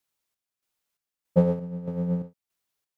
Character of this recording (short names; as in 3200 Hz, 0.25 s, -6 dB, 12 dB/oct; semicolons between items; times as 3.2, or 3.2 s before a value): chopped level 1.6 Hz, depth 60%, duty 55%